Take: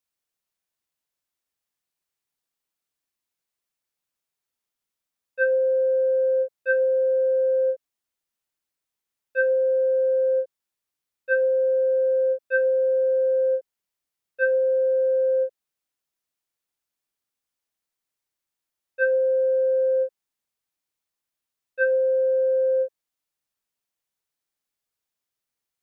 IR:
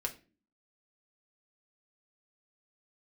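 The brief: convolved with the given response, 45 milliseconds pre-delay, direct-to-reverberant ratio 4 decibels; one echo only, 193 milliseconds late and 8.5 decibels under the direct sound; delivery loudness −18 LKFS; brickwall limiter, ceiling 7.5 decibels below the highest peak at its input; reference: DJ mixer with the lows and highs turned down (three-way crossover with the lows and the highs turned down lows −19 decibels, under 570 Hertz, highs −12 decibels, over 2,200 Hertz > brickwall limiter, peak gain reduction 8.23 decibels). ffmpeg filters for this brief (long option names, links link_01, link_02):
-filter_complex "[0:a]alimiter=limit=-20dB:level=0:latency=1,aecho=1:1:193:0.376,asplit=2[link_01][link_02];[1:a]atrim=start_sample=2205,adelay=45[link_03];[link_02][link_03]afir=irnorm=-1:irlink=0,volume=-5.5dB[link_04];[link_01][link_04]amix=inputs=2:normalize=0,acrossover=split=570 2200:gain=0.112 1 0.251[link_05][link_06][link_07];[link_05][link_06][link_07]amix=inputs=3:normalize=0,volume=16.5dB,alimiter=limit=-13.5dB:level=0:latency=1"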